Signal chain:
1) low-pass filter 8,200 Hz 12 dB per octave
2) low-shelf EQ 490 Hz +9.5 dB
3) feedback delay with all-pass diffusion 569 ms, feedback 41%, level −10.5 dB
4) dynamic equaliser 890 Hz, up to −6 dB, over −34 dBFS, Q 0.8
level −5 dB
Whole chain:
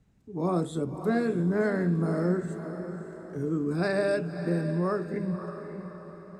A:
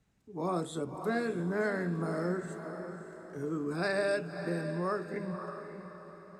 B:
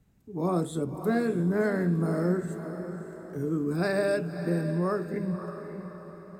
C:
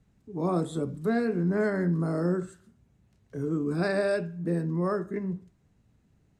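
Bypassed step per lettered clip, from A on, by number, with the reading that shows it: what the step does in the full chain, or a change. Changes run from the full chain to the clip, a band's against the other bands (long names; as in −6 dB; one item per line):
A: 2, 125 Hz band −7.0 dB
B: 1, 8 kHz band +3.0 dB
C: 3, change in momentary loudness spread −4 LU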